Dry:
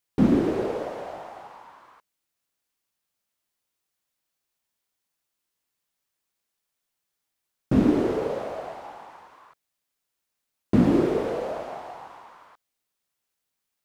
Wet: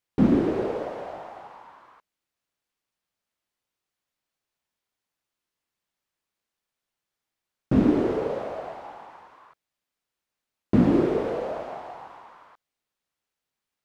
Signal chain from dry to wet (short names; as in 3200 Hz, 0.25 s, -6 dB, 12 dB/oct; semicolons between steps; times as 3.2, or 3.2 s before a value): high shelf 6100 Hz -10 dB